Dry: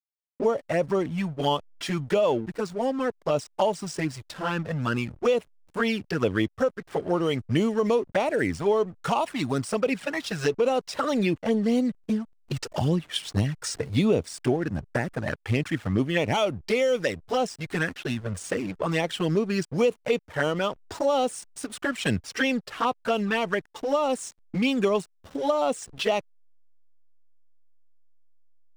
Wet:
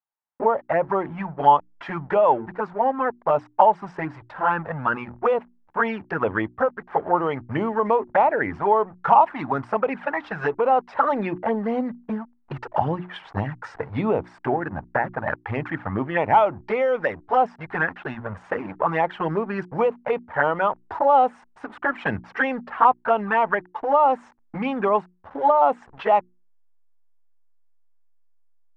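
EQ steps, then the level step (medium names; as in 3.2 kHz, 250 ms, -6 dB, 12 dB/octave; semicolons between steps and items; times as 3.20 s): resonant low-pass 1.7 kHz, resonance Q 1.9; peaking EQ 870 Hz +14.5 dB 0.88 oct; hum notches 60/120/180/240/300/360 Hz; -3.0 dB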